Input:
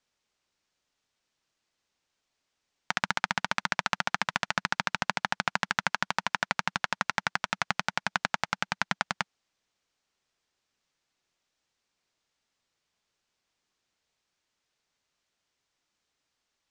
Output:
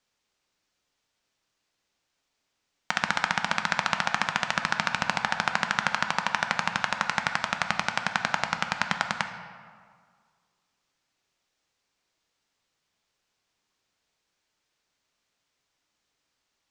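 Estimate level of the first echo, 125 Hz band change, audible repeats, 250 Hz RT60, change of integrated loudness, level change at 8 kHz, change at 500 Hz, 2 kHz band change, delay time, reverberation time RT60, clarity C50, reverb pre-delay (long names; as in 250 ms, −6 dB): no echo audible, +3.0 dB, no echo audible, 1.9 s, +3.0 dB, +2.5 dB, +3.0 dB, +3.0 dB, no echo audible, 1.9 s, 8.0 dB, 7 ms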